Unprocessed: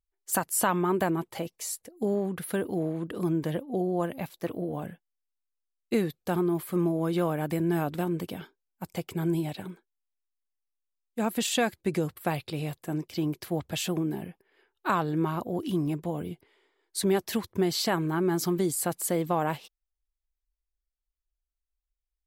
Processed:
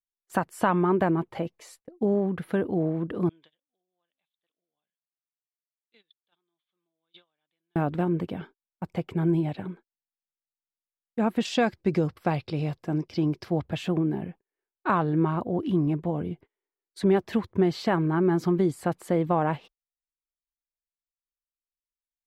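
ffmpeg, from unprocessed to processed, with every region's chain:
ffmpeg -i in.wav -filter_complex "[0:a]asettb=1/sr,asplit=3[link_01][link_02][link_03];[link_01]atrim=end=3.294[link_04];[link_02]atrim=start=3.29:end=7.76,asetpts=PTS-STARTPTS,afade=type=in:duration=0.004:curve=qsin,afade=type=out:start_time=4.466:duration=0.004:curve=qsin,acontrast=41,bandpass=frequency=3500:width_type=q:width=9.9[link_05];[link_03]atrim=start=7.756[link_06];[link_04][link_05]acrossfade=duration=0.004:curve1=hsin:curve2=qsin[link_07];[link_07][link_06]acrossfade=duration=0.004:curve1=qsin:curve2=hsin,asettb=1/sr,asplit=3[link_08][link_09][link_10];[link_08]atrim=end=11.454[link_11];[link_09]atrim=start=11.45:end=13.62,asetpts=PTS-STARTPTS,afade=type=in:duration=0.004:curve=qsin,afade=type=out:start_time=2.166:duration=0.004:curve=qsin,equalizer=frequency=5300:width_type=o:width=0.54:gain=13,bandreject=frequency=1800:width=21[link_12];[link_10]atrim=start=13.616[link_13];[link_11][link_12]acrossfade=duration=0.004:curve1=hsin:curve2=qsin[link_14];[link_14][link_13]acrossfade=duration=0.004:curve1=qsin:curve2=hsin,aemphasis=mode=reproduction:type=75kf,agate=range=-27dB:threshold=-50dB:ratio=16:detection=peak,bass=frequency=250:gain=2,treble=frequency=4000:gain=-8,volume=3dB" out.wav

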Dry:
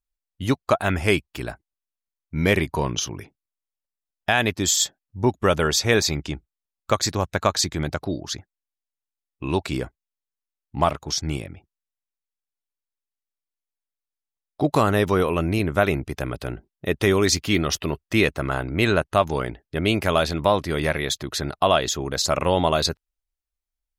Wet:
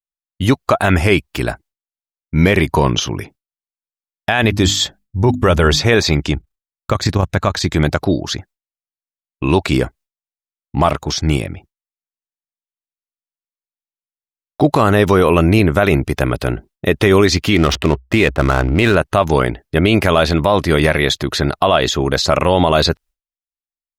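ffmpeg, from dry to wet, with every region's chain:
ffmpeg -i in.wav -filter_complex "[0:a]asettb=1/sr,asplit=3[link_01][link_02][link_03];[link_01]atrim=end=4.434[link_04];[link_02]atrim=start=4.43:end=5.83,asetpts=PTS-STARTPTS,afade=type=in:duration=0.004:curve=qsin,afade=type=out:start_time=1.396:duration=0.004:curve=qsin,lowshelf=frequency=100:gain=12,bandreject=frequency=50:width_type=h:width=6,bandreject=frequency=100:width_type=h:width=6,bandreject=frequency=150:width_type=h:width=6,bandreject=frequency=200:width_type=h:width=6,bandreject=frequency=250:width_type=h:width=6,bandreject=frequency=300:width_type=h:width=6[link_05];[link_03]atrim=start=5.826[link_06];[link_04][link_05]acrossfade=duration=0.004:curve1=hsin:curve2=qsin[link_07];[link_07][link_06]acrossfade=duration=0.004:curve1=qsin:curve2=hsin,asettb=1/sr,asplit=3[link_08][link_09][link_10];[link_08]atrim=end=6.344[link_11];[link_09]atrim=start=6.34:end=7.65,asetpts=PTS-STARTPTS,afade=type=in:duration=0.004:curve=qsin,afade=type=out:start_time=1.306:duration=0.004:curve=qsin,bass=frequency=250:gain=6,treble=frequency=4000:gain=-3,tremolo=f=29:d=0.621[link_12];[link_10]atrim=start=7.646[link_13];[link_11][link_12]acrossfade=duration=0.004:curve1=hsin:curve2=qsin[link_14];[link_14][link_13]acrossfade=duration=0.004:curve1=qsin:curve2=hsin,asettb=1/sr,asplit=3[link_15][link_16][link_17];[link_15]atrim=end=17.564[link_18];[link_16]atrim=start=17.56:end=18.95,asetpts=PTS-STARTPTS,afade=type=in:duration=0.004:curve=qsin,afade=type=out:start_time=1.386:duration=0.004:curve=qsin,equalizer=frequency=63:width_type=o:width=0.3:gain=7,adynamicsmooth=sensitivity=6:basefreq=680[link_19];[link_17]atrim=start=18.946[link_20];[link_18][link_19]acrossfade=duration=0.004:curve1=hsin:curve2=qsin[link_21];[link_21][link_20]acrossfade=duration=0.004:curve1=qsin:curve2=hsin,acrossover=split=4100[link_22][link_23];[link_23]acompressor=threshold=-38dB:ratio=4:attack=1:release=60[link_24];[link_22][link_24]amix=inputs=2:normalize=0,agate=range=-33dB:threshold=-48dB:ratio=3:detection=peak,alimiter=level_in=12.5dB:limit=-1dB:release=50:level=0:latency=1,volume=-1dB" out.wav

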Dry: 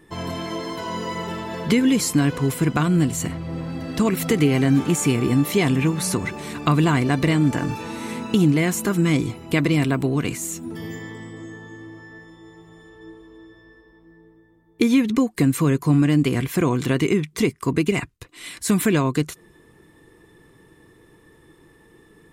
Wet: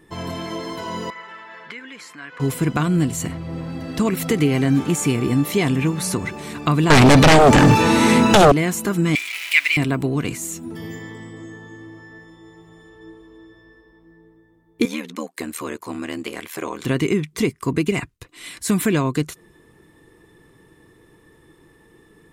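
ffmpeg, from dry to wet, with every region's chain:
ffmpeg -i in.wav -filter_complex "[0:a]asettb=1/sr,asplit=3[link_01][link_02][link_03];[link_01]atrim=end=1.104[link_04];[link_02]atrim=start=1.1:end=2.4,asetpts=PTS-STARTPTS,afade=type=in:duration=0.004:curve=qsin,afade=type=out:start_time=1.296:duration=0.004:curve=qsin,acompressor=threshold=-21dB:ratio=2:attack=3.2:release=140:knee=1:detection=peak,bandpass=frequency=1700:width_type=q:width=1.9[link_05];[link_03]atrim=start=2.396[link_06];[link_04][link_05]acrossfade=duration=0.004:curve1=hsin:curve2=qsin[link_07];[link_07][link_06]acrossfade=duration=0.004:curve1=qsin:curve2=hsin,asettb=1/sr,asplit=3[link_08][link_09][link_10];[link_08]atrim=end=6.904[link_11];[link_09]atrim=start=6.9:end=8.52,asetpts=PTS-STARTPTS,afade=type=in:duration=0.004:curve=qsin,afade=type=out:start_time=1.616:duration=0.004:curve=qsin,acrossover=split=8900[link_12][link_13];[link_13]acompressor=threshold=-55dB:ratio=4:attack=1:release=60[link_14];[link_12][link_14]amix=inputs=2:normalize=0,aeval=exprs='0.473*sin(PI/2*4.47*val(0)/0.473)':channel_layout=same[link_15];[link_10]atrim=start=8.516[link_16];[link_11][link_15]acrossfade=duration=0.004:curve1=hsin:curve2=qsin[link_17];[link_17][link_16]acrossfade=duration=0.004:curve1=qsin:curve2=hsin,asettb=1/sr,asplit=3[link_18][link_19][link_20];[link_18]atrim=end=9.154[link_21];[link_19]atrim=start=9.15:end=9.77,asetpts=PTS-STARTPTS,afade=type=in:duration=0.004:curve=qsin,afade=type=out:start_time=0.616:duration=0.004:curve=qsin,aeval=exprs='val(0)+0.5*0.0562*sgn(val(0))':channel_layout=same,highpass=frequency=2300:width_type=q:width=4.8[link_22];[link_20]atrim=start=9.766[link_23];[link_21][link_22]acrossfade=duration=0.004:curve1=hsin:curve2=qsin[link_24];[link_24][link_23]acrossfade=duration=0.004:curve1=qsin:curve2=hsin,asettb=1/sr,asplit=3[link_25][link_26][link_27];[link_25]atrim=end=14.854[link_28];[link_26]atrim=start=14.85:end=16.85,asetpts=PTS-STARTPTS,afade=type=in:duration=0.004:curve=qsin,afade=type=out:start_time=1.996:duration=0.004:curve=qsin,highpass=460,aeval=exprs='val(0)*sin(2*PI*39*n/s)':channel_layout=same[link_29];[link_27]atrim=start=16.846[link_30];[link_28][link_29]acrossfade=duration=0.004:curve1=hsin:curve2=qsin[link_31];[link_31][link_30]acrossfade=duration=0.004:curve1=qsin:curve2=hsin" out.wav

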